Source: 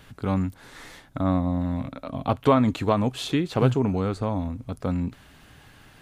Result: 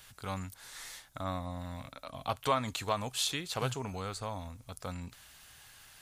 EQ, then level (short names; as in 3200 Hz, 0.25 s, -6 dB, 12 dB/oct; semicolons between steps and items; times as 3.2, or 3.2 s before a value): tone controls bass -6 dB, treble +11 dB; bell 300 Hz -13 dB 1.8 oct; -4.5 dB